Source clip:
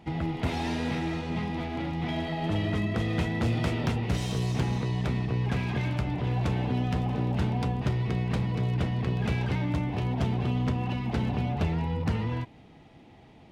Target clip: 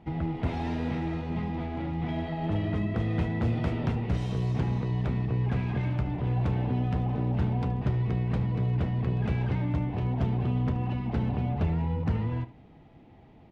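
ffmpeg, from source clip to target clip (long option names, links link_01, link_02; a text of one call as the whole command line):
ffmpeg -i in.wav -af "lowpass=frequency=1600:poles=1,lowshelf=frequency=87:gain=5,aecho=1:1:74:0.15,volume=-1.5dB" out.wav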